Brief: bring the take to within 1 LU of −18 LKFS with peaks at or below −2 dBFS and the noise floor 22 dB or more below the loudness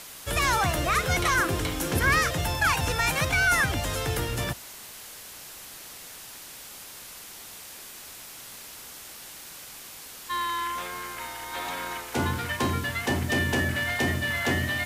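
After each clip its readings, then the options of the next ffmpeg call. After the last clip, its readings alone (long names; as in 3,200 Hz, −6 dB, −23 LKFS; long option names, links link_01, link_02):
background noise floor −44 dBFS; target noise floor −48 dBFS; integrated loudness −26.0 LKFS; sample peak −11.0 dBFS; target loudness −18.0 LKFS
→ -af "afftdn=noise_reduction=6:noise_floor=-44"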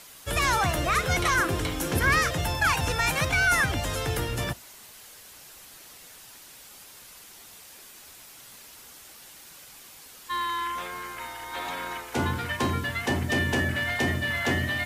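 background noise floor −49 dBFS; integrated loudness −26.0 LKFS; sample peak −11.0 dBFS; target loudness −18.0 LKFS
→ -af "volume=8dB"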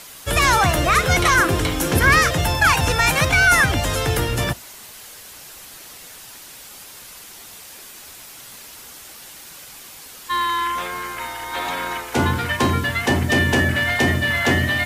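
integrated loudness −18.0 LKFS; sample peak −3.0 dBFS; background noise floor −41 dBFS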